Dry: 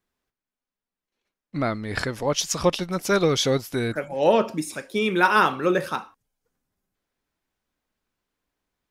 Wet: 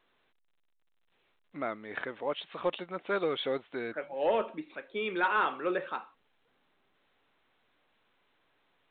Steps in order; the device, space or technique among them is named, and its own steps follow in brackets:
telephone (band-pass filter 340–3,600 Hz; soft clipping −10 dBFS, distortion −19 dB; level −7.5 dB; A-law companding 64 kbit/s 8,000 Hz)

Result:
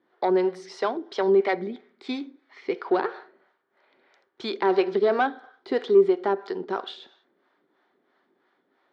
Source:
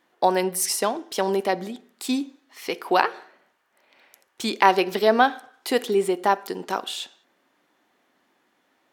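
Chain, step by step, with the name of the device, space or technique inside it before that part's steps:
0:01.35–0:02.74: parametric band 2,200 Hz +14 dB → +7.5 dB 0.3 octaves
guitar amplifier with harmonic tremolo (two-band tremolo in antiphase 3 Hz, depth 70%, crossover 490 Hz; soft clipping −16 dBFS, distortion −14 dB; loudspeaker in its box 95–4,100 Hz, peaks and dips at 390 Hz +9 dB, 1,400 Hz +3 dB, 2,700 Hz −9 dB)

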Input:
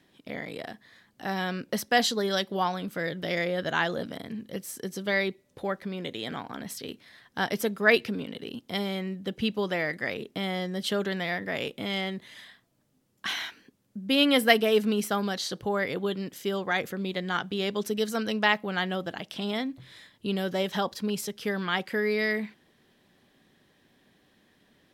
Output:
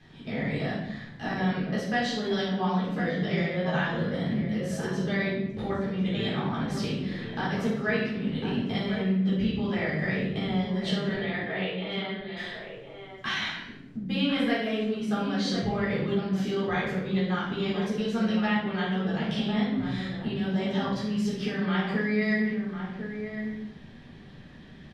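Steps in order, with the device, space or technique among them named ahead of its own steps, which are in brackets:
jukebox (low-pass filter 5,200 Hz 12 dB per octave; low shelf with overshoot 230 Hz +7 dB, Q 1.5; downward compressor 5 to 1, threshold −38 dBFS, peak gain reduction 21 dB)
0:11.14–0:12.37: Chebyshev band-pass filter 330–4,400 Hz, order 5
slap from a distant wall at 180 metres, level −7 dB
rectangular room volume 270 cubic metres, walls mixed, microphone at 3.8 metres

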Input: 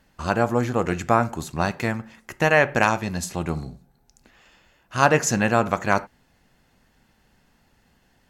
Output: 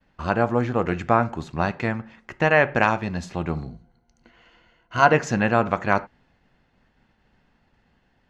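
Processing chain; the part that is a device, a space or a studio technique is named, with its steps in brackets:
hearing-loss simulation (low-pass filter 3,400 Hz 12 dB per octave; downward expander −59 dBFS)
0:03.70–0:05.13: EQ curve with evenly spaced ripples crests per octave 1.9, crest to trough 10 dB

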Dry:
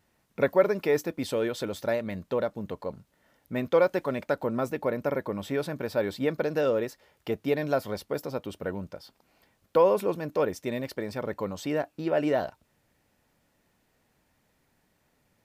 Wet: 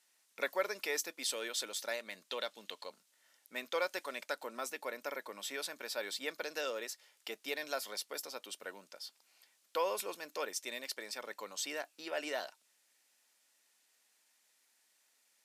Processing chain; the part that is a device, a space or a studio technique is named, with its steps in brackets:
high-pass filter 210 Hz 24 dB per octave
piezo pickup straight into a mixer (low-pass filter 8,900 Hz 12 dB per octave; first difference)
0:02.30–0:02.90: parametric band 3,400 Hz +9.5 dB 1 octave
level +8 dB

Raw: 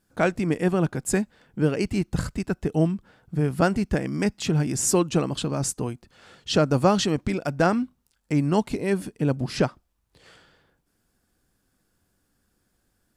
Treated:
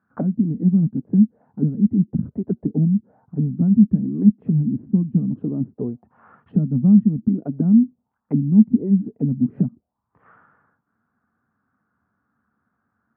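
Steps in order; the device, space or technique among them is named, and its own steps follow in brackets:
envelope filter bass rig (envelope-controlled low-pass 210–1,300 Hz down, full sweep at −20 dBFS; loudspeaker in its box 85–2,200 Hz, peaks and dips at 230 Hz +7 dB, 350 Hz −7 dB, 530 Hz −6 dB)
level −2 dB

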